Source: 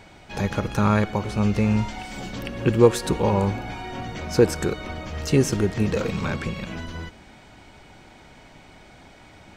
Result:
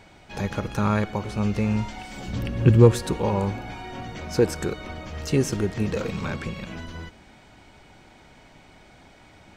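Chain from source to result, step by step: in parallel at -11.5 dB: overload inside the chain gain 9.5 dB; 2.28–3.03 s: on the sum: peaking EQ 83 Hz +13.5 dB 2.4 oct; trim -5 dB

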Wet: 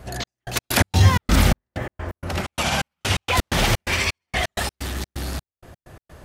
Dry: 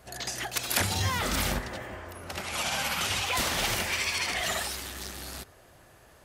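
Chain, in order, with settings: bass shelf 320 Hz +9.5 dB; trance gate "xx..x.x.xx." 128 bpm -60 dB; treble shelf 4.7 kHz -5 dB; trim +8 dB

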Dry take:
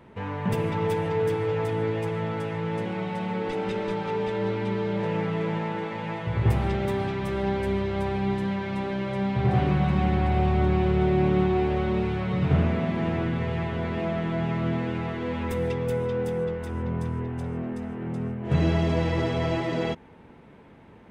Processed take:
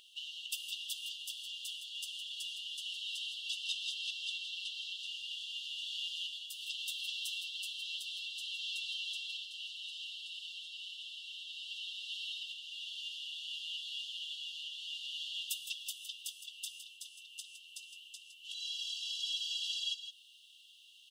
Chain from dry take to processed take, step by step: compression, threshold -29 dBFS, peak gain reduction 12.5 dB; brick-wall FIR high-pass 2.7 kHz; delay 162 ms -10.5 dB; trim +13 dB

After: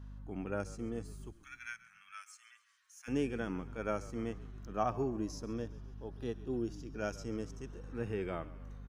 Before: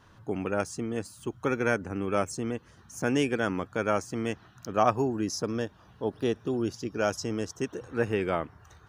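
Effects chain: hum 50 Hz, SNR 10 dB; 1.32–3.08 s: inverse Chebyshev high-pass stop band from 480 Hz, stop band 60 dB; harmonic-percussive split percussive -12 dB; on a send: frequency-shifting echo 136 ms, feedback 61%, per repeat -43 Hz, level -18 dB; on the sum: trim -6 dB

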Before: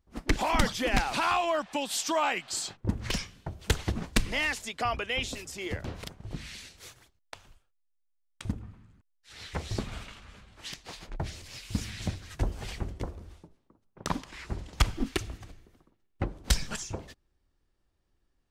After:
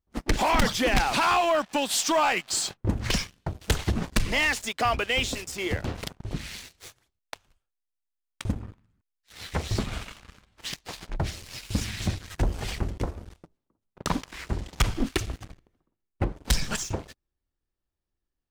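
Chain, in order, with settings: 15.45–16.36 s: treble shelf 3.5 kHz -6.5 dB; waveshaping leveller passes 3; trim -5 dB

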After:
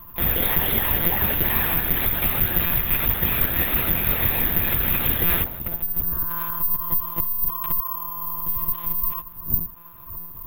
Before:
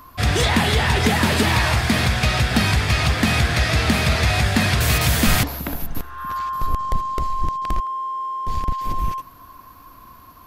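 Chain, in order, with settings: wind noise 92 Hz -32 dBFS; in parallel at -3 dB: compression, threshold -27 dBFS, peak gain reduction 14.5 dB; on the sum: monotone LPC vocoder at 8 kHz 170 Hz; careless resampling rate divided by 3×, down none, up zero stuff; trim -9.5 dB

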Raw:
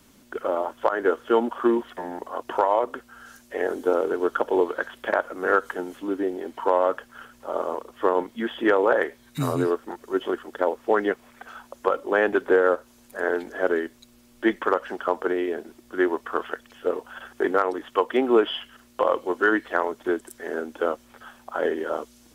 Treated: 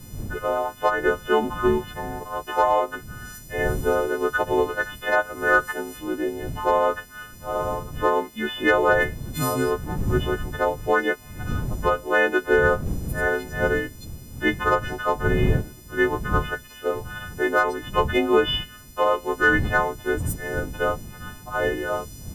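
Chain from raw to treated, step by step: partials quantised in pitch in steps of 3 st; wind noise 130 Hz -32 dBFS

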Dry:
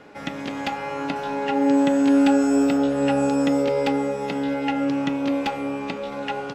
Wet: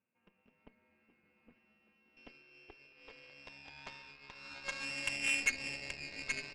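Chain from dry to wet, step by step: 0.68–2.17 s: hard clipper -25.5 dBFS, distortion -9 dB; frequency inversion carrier 3 kHz; band-pass sweep 220 Hz -> 2.1 kHz, 1.93–5.17 s; Chebyshev shaper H 3 -10 dB, 5 -39 dB, 6 -24 dB, 8 -41 dB, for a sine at -16.5 dBFS

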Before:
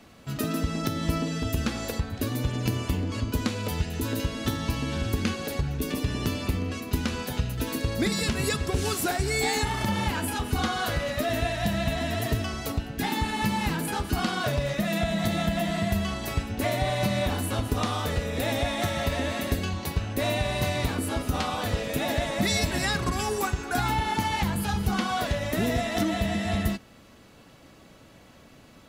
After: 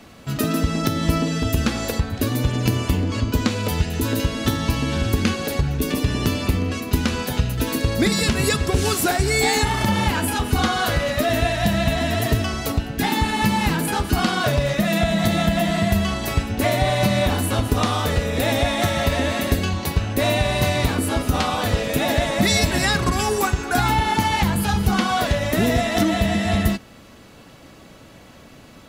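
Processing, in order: 3.11–3.51 s: peaking EQ 11 kHz -8 dB 0.39 oct; trim +7 dB

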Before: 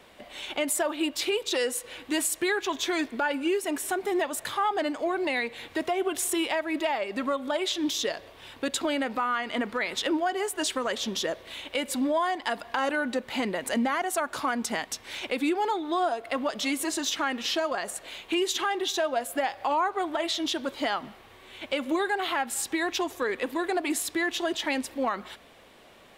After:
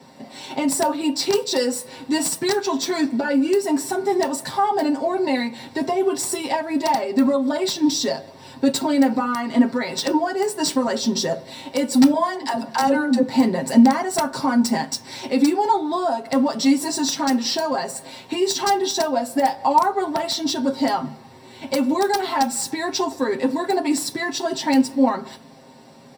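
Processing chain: median filter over 3 samples; tone controls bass +3 dB, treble +5 dB; comb 7.5 ms, depth 88%; integer overflow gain 13.5 dB; 12.14–13.23 s: phase dispersion lows, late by 87 ms, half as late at 340 Hz; reverberation RT60 0.25 s, pre-delay 3 ms, DRR 4.5 dB; trim -4.5 dB

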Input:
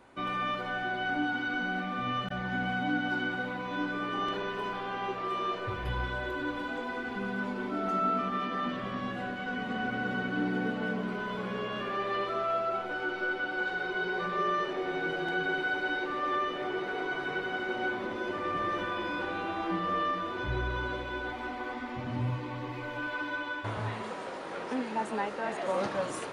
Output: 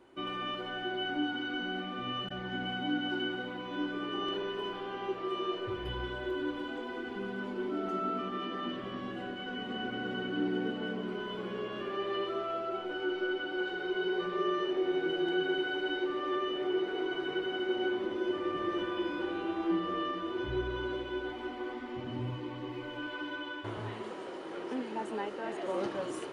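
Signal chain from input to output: small resonant body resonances 350/3000 Hz, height 13 dB, ringing for 40 ms; trim -6.5 dB

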